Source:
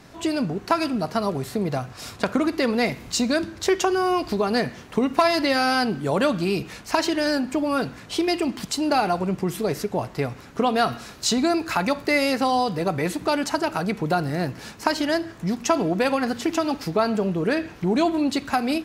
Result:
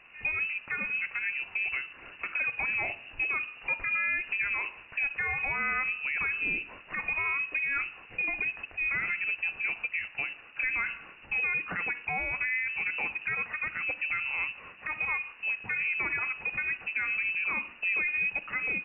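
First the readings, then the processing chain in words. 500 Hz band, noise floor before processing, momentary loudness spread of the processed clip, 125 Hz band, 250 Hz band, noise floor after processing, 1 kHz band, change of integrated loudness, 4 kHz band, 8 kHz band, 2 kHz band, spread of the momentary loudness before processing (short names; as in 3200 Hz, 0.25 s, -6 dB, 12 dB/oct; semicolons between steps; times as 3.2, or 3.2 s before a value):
-26.5 dB, -44 dBFS, 5 LU, -21.0 dB, -29.0 dB, -51 dBFS, -16.0 dB, -6.0 dB, -18.5 dB, under -40 dB, +2.5 dB, 6 LU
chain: limiter -15 dBFS, peak gain reduction 11 dB; inverted band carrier 2800 Hz; gain -7 dB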